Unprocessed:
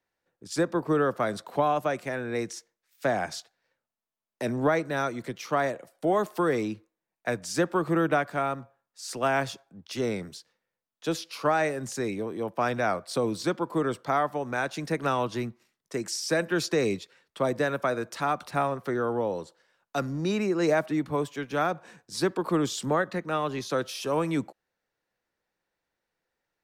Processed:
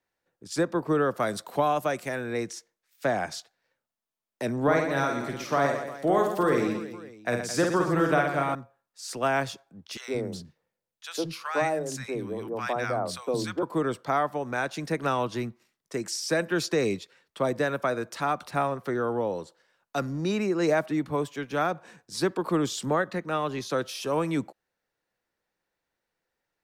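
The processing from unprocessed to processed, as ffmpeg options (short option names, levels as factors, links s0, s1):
-filter_complex "[0:a]asettb=1/sr,asplit=3[s0][s1][s2];[s0]atrim=end=1.144[s3];[s1]atrim=start=1.14:end=2.33,asetpts=PTS-STARTPTS,afade=t=in:d=0.004:c=qsin,afade=t=out:st=1.186:d=0.004:c=qsin,highshelf=f=5500:g=9[s4];[s2]atrim=start=2.326[s5];[s3][s4]acrossfade=d=0.004:c1=hsin:c2=qsin[s6];[s6][s5]acrossfade=d=0.004:c1=qsin:c2=hsin,asettb=1/sr,asplit=3[s7][s8][s9];[s7]atrim=end=4.634[s10];[s8]atrim=start=4.63:end=8.55,asetpts=PTS-STARTPTS,afade=t=in:d=0.004:c=qsin,afade=t=out:st=3.916:d=0.004:c=qsin,aecho=1:1:50|120|218|355.2|547.3:0.631|0.398|0.251|0.158|0.1,atrim=end_sample=172872[s11];[s9]atrim=start=8.546[s12];[s10][s11]acrossfade=d=0.004:c1=hsin:c2=qsin[s13];[s13][s12]acrossfade=d=0.004:c1=qsin:c2=hsin,asettb=1/sr,asplit=3[s14][s15][s16];[s14]atrim=end=9.974[s17];[s15]atrim=start=9.97:end=13.63,asetpts=PTS-STARTPTS,afade=t=in:d=0.004:c=qsin,afade=t=out:st=3.656:d=0.004:c=qsin,acrossover=split=240|1100[s18][s19][s20];[s19]adelay=110[s21];[s18]adelay=170[s22];[s22][s21][s20]amix=inputs=3:normalize=0,atrim=end_sample=161406[s23];[s16]atrim=start=13.626[s24];[s17][s23]acrossfade=d=0.004:c1=hsin:c2=qsin[s25];[s25][s24]acrossfade=d=0.004:c1=qsin:c2=hsin"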